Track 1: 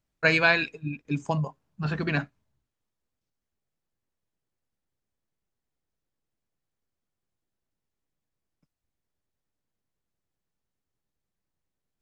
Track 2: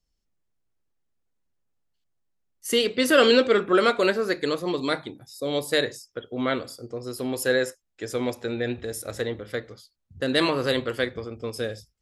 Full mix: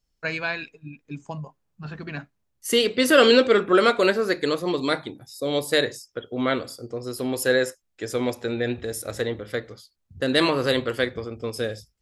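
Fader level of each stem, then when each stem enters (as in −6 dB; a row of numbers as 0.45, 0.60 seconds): −7.0, +2.0 decibels; 0.00, 0.00 seconds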